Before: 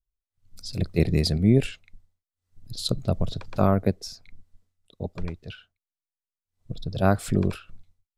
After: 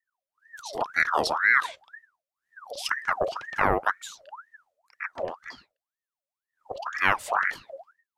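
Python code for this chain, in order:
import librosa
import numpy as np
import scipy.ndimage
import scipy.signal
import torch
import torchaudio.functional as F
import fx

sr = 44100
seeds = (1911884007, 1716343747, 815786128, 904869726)

y = fx.ring_lfo(x, sr, carrier_hz=1200.0, swing_pct=55, hz=2.0)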